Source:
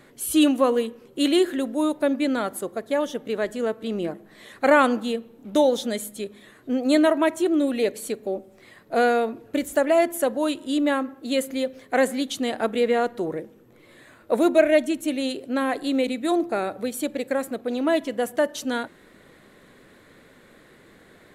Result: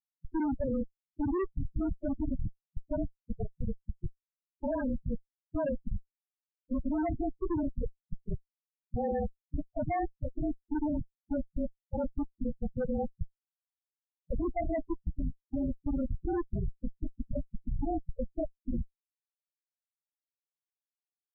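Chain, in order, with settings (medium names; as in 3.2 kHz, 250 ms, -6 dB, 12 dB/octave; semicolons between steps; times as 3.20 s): frequency axis rescaled in octaves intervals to 108%; Schmitt trigger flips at -21.5 dBFS; loudest bins only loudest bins 8; trim -2.5 dB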